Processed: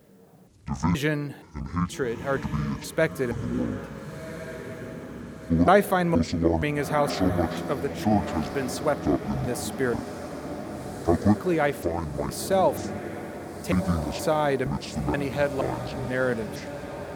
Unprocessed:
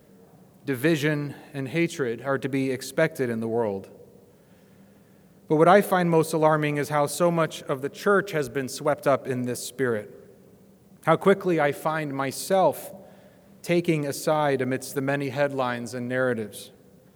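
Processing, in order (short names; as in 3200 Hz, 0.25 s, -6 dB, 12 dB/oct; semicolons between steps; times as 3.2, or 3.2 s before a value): trilling pitch shifter -11 st, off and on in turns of 0.473 s; diffused feedback echo 1.489 s, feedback 60%, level -10.5 dB; gain -1 dB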